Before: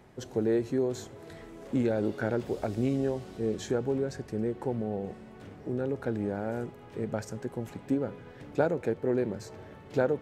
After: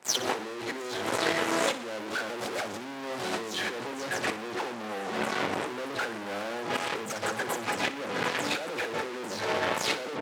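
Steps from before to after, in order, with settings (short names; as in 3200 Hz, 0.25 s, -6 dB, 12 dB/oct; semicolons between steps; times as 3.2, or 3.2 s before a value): spectral delay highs early, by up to 0.164 s; HPF 64 Hz 24 dB/oct; gate -45 dBFS, range -7 dB; dynamic EQ 140 Hz, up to -4 dB, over -46 dBFS, Q 2.9; in parallel at -8 dB: fuzz box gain 50 dB, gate -56 dBFS; on the sum: negative-ratio compressor -29 dBFS, ratio -1; weighting filter A; on a send: feedback echo 60 ms, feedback 52%, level -14 dB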